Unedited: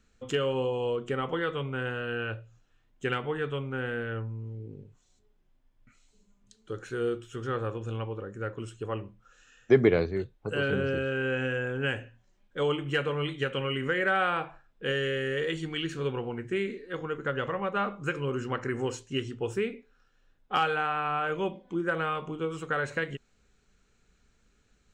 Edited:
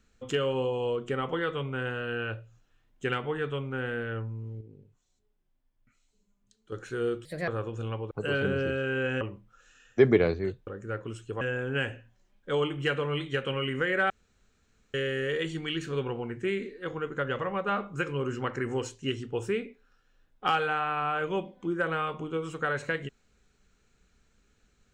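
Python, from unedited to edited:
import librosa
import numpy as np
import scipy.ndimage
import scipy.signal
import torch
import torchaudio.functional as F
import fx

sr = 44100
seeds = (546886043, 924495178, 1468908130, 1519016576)

y = fx.edit(x, sr, fx.clip_gain(start_s=4.61, length_s=2.11, db=-7.5),
    fx.speed_span(start_s=7.25, length_s=0.31, speed=1.35),
    fx.swap(start_s=8.19, length_s=0.74, other_s=10.39, other_length_s=1.1),
    fx.room_tone_fill(start_s=14.18, length_s=0.84), tone=tone)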